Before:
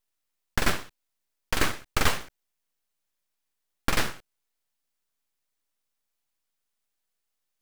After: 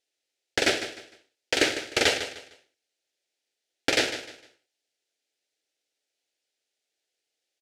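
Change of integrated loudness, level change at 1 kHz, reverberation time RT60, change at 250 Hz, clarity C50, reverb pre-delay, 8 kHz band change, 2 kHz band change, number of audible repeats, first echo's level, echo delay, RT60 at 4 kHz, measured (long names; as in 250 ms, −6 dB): +3.0 dB, −2.5 dB, no reverb audible, +2.0 dB, no reverb audible, no reverb audible, +3.0 dB, +3.5 dB, 3, −11.5 dB, 152 ms, no reverb audible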